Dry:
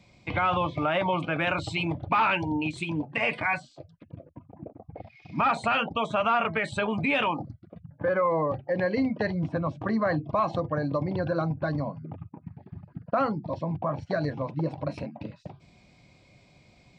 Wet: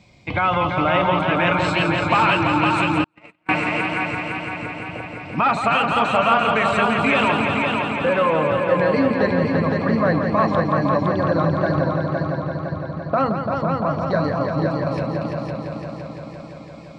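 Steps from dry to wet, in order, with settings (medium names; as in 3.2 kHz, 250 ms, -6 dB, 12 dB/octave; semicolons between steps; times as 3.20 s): multi-head delay 170 ms, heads all three, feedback 68%, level -8 dB; wow and flutter 29 cents; 3.04–3.49 s: gate -19 dBFS, range -47 dB; trim +5.5 dB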